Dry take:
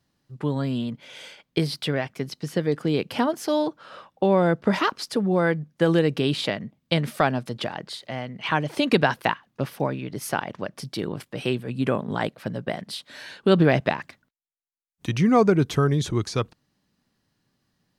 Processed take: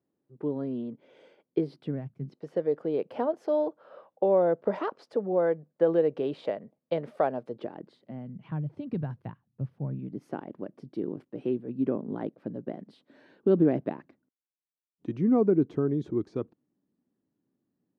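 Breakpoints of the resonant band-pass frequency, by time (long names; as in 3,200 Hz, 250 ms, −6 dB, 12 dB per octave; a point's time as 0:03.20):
resonant band-pass, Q 2
0:01.73 380 Hz
0:02.19 100 Hz
0:02.40 530 Hz
0:07.34 530 Hz
0:08.73 110 Hz
0:09.79 110 Hz
0:10.25 310 Hz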